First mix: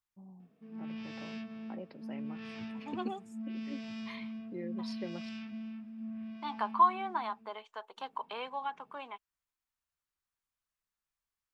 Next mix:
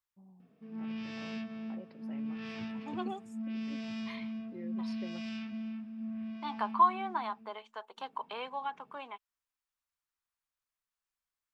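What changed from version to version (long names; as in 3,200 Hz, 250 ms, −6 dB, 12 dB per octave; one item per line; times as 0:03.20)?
first voice −5.5 dB
reverb: on, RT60 1.5 s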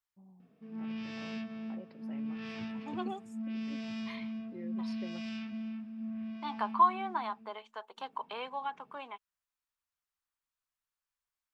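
nothing changed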